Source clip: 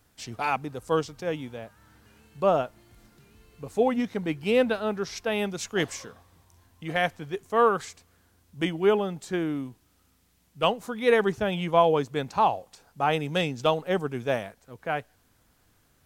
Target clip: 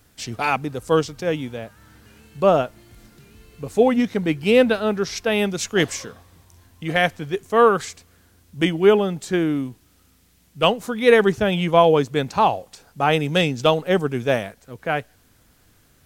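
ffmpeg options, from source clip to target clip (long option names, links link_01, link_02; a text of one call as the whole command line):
ffmpeg -i in.wav -af "equalizer=frequency=910:width=1.3:gain=-4,volume=8dB" out.wav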